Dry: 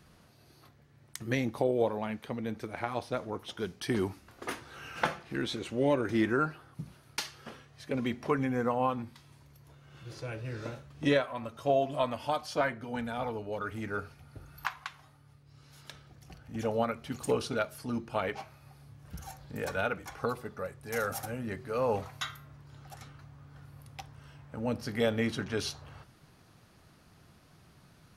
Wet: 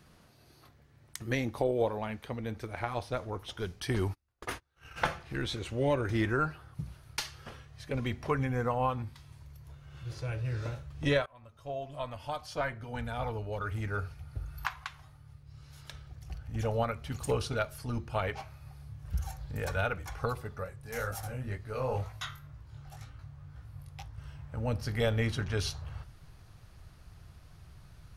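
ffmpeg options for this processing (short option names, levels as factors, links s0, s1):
-filter_complex "[0:a]asettb=1/sr,asplit=3[s0][s1][s2];[s0]atrim=end=3.904[s3];[s1]atrim=start=3.9:end=5.11,asetpts=PTS-STARTPTS,afade=t=in:d=0.004:c=qsin,afade=t=out:st=1.206:d=0.004:c=qsin,agate=range=0.0251:threshold=0.00562:ratio=16:release=100:detection=peak[s4];[s2]atrim=start=5.106[s5];[s3][s4]acrossfade=d=0.004:c1=hsin:c2=qsin[s6];[s6][s5]acrossfade=d=0.004:c1=qsin:c2=hsin,asettb=1/sr,asplit=3[s7][s8][s9];[s7]atrim=end=20.644[s10];[s8]atrim=start=20.64:end=24.18,asetpts=PTS-STARTPTS,afade=t=in:d=0.004:c=qsin,afade=t=out:st=3.536:d=0.004:c=qsin,flanger=delay=17:depth=6:speed=2[s11];[s9]atrim=start=24.176[s12];[s10][s11]acrossfade=d=0.004:c1=hsin:c2=qsin[s13];[s13][s12]acrossfade=d=0.004:c1=qsin:c2=hsin,asplit=2[s14][s15];[s14]atrim=end=11.26,asetpts=PTS-STARTPTS,afade=t=out:st=11.256:d=0.004:c=hsin:silence=0.0944061[s16];[s15]atrim=start=11.26,asetpts=PTS-STARTPTS,afade=t=in:d=2.03:silence=0.0944061[s17];[s16][s17]concat=n=2:v=0:a=1,asubboost=boost=9.5:cutoff=74"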